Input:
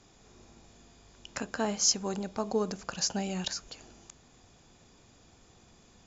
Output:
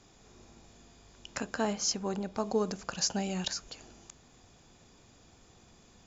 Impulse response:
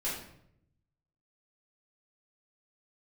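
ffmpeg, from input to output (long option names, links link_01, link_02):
-filter_complex "[0:a]asettb=1/sr,asplit=3[link_01][link_02][link_03];[link_01]atrim=end=1.734[link_04];[link_02]atrim=start=1.73:end=2.35,asetpts=PTS-STARTPTS,afade=type=in:duration=0.004:curve=qsin,afade=type=out:start_time=0.616:duration=0.004:curve=qsin,highshelf=frequency=5400:gain=-10.5[link_05];[link_03]atrim=start=2.346[link_06];[link_04][link_05]acrossfade=duration=0.004:curve1=hsin:curve2=qsin[link_07];[link_07][link_06]acrossfade=duration=0.004:curve1=qsin:curve2=hsin"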